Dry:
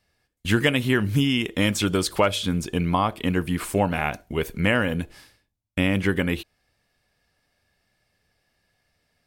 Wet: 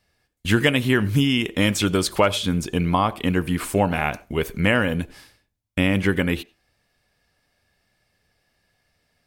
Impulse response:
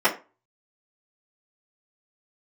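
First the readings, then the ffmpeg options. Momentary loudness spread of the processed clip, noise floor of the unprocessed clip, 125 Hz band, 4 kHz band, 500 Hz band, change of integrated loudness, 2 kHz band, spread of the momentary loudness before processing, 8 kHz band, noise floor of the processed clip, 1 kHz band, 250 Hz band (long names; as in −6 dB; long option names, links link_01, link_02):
8 LU, −75 dBFS, +2.0 dB, +2.0 dB, +2.0 dB, +2.0 dB, +2.0 dB, 8 LU, +2.0 dB, −73 dBFS, +2.0 dB, +2.0 dB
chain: -filter_complex "[0:a]asplit=2[link_01][link_02];[1:a]atrim=start_sample=2205,asetrate=52920,aresample=44100,adelay=85[link_03];[link_02][link_03]afir=irnorm=-1:irlink=0,volume=-39dB[link_04];[link_01][link_04]amix=inputs=2:normalize=0,volume=2dB"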